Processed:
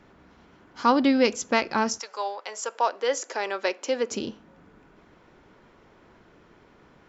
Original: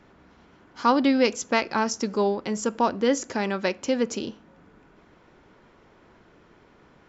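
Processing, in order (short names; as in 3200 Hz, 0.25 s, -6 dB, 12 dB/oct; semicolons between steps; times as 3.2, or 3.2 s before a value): 1.98–4.1 HPF 710 Hz -> 310 Hz 24 dB/oct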